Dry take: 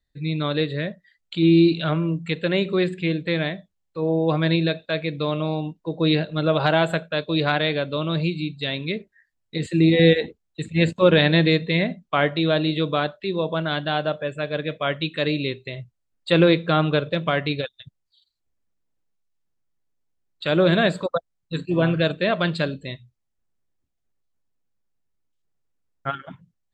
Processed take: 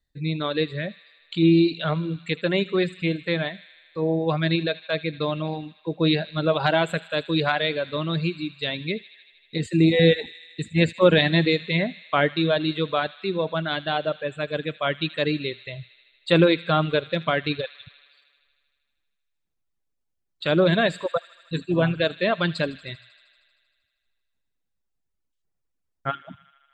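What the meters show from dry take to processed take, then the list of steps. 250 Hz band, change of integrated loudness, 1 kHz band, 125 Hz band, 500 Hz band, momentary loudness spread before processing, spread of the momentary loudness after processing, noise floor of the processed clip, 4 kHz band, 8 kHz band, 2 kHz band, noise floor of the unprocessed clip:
-2.0 dB, -1.5 dB, -0.5 dB, -2.5 dB, -1.0 dB, 14 LU, 14 LU, -77 dBFS, -1.0 dB, no reading, -1.0 dB, -76 dBFS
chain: reverb removal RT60 1.2 s; on a send: feedback echo behind a high-pass 78 ms, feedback 77%, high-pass 2 kHz, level -16 dB

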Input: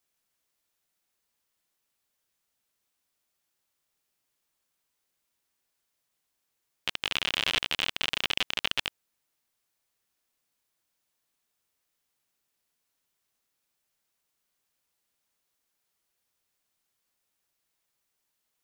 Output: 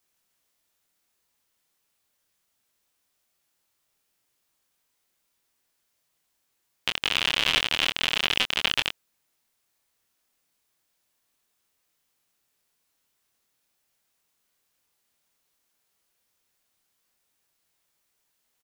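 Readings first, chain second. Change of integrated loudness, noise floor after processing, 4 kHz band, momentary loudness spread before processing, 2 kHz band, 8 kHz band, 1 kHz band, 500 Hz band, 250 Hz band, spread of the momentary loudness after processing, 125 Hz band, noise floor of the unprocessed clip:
+5.0 dB, -75 dBFS, +5.0 dB, 8 LU, +5.0 dB, +5.0 dB, +5.0 dB, +4.5 dB, +5.0 dB, 9 LU, +5.0 dB, -80 dBFS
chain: doubling 25 ms -6 dB; trim +4 dB

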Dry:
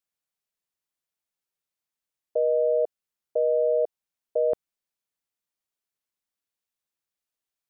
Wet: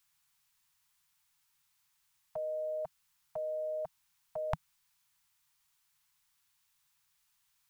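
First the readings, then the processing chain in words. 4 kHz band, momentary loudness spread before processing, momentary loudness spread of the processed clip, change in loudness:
no reading, 10 LU, 9 LU, -13.5 dB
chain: elliptic band-stop 160–890 Hz, stop band 40 dB; trim +14 dB

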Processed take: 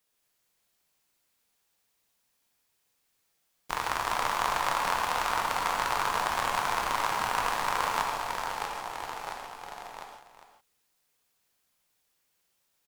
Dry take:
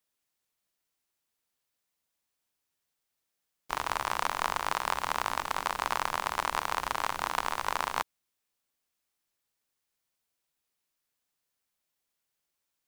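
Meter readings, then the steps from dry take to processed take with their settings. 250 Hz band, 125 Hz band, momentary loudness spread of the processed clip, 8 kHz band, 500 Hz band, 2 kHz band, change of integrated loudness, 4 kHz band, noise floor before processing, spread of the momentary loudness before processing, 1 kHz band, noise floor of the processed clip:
+3.5 dB, +3.5 dB, 14 LU, +3.5 dB, +4.0 dB, +3.0 dB, +2.5 dB, +3.0 dB, -84 dBFS, 2 LU, +3.5 dB, -75 dBFS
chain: ever faster or slower copies 166 ms, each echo -1 st, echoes 3, each echo -6 dB; in parallel at +3 dB: compression, threshold -39 dBFS, peak gain reduction 15.5 dB; on the sum: delay 404 ms -11.5 dB; gated-style reverb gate 190 ms flat, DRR 1.5 dB; trim -3 dB

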